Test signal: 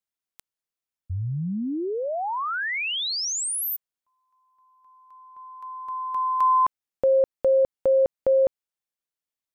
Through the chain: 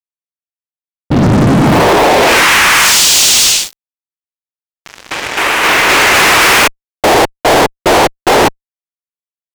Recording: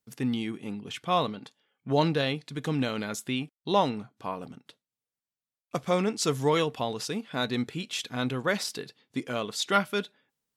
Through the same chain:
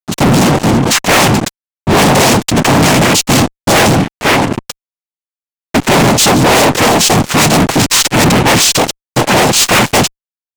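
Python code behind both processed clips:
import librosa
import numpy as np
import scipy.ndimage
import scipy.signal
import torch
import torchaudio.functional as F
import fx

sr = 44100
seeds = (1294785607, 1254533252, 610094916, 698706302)

y = fx.noise_vocoder(x, sr, seeds[0], bands=4)
y = fx.fuzz(y, sr, gain_db=43.0, gate_db=-49.0)
y = y * librosa.db_to_amplitude(6.5)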